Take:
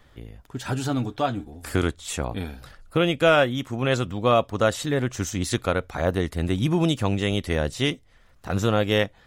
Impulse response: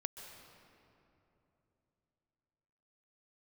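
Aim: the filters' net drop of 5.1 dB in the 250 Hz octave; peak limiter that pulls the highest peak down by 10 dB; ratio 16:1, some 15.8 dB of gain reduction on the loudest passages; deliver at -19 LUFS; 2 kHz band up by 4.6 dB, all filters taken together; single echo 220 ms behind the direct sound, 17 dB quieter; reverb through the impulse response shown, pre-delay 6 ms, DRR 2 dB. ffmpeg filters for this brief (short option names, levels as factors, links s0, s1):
-filter_complex "[0:a]equalizer=f=250:t=o:g=-7.5,equalizer=f=2000:t=o:g=6.5,acompressor=threshold=0.0398:ratio=16,alimiter=limit=0.0631:level=0:latency=1,aecho=1:1:220:0.141,asplit=2[s0][s1];[1:a]atrim=start_sample=2205,adelay=6[s2];[s1][s2]afir=irnorm=-1:irlink=0,volume=0.944[s3];[s0][s3]amix=inputs=2:normalize=0,volume=5.31"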